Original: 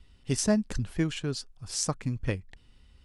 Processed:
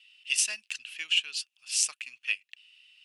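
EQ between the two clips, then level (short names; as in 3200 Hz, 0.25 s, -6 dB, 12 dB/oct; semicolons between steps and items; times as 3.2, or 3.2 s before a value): dynamic EQ 10000 Hz, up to +8 dB, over -49 dBFS, Q 1.3; resonant high-pass 2700 Hz, resonance Q 9.1; 0.0 dB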